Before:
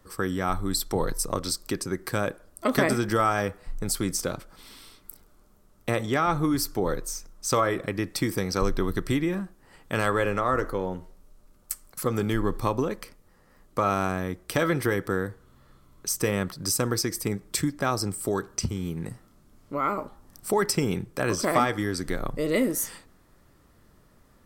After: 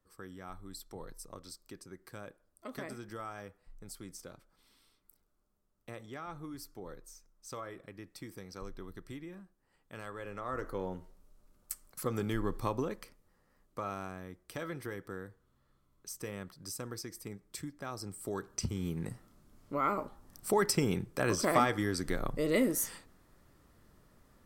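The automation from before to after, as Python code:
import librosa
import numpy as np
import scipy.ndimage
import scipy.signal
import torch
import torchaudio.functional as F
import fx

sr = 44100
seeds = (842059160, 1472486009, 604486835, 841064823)

y = fx.gain(x, sr, db=fx.line((10.16, -20.0), (10.81, -8.0), (12.87, -8.0), (14.11, -16.0), (17.87, -16.0), (18.86, -4.5)))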